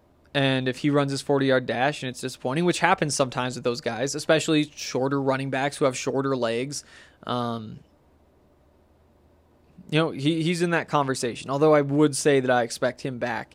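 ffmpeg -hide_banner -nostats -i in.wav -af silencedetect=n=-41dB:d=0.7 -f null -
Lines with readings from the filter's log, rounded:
silence_start: 7.78
silence_end: 9.79 | silence_duration: 2.01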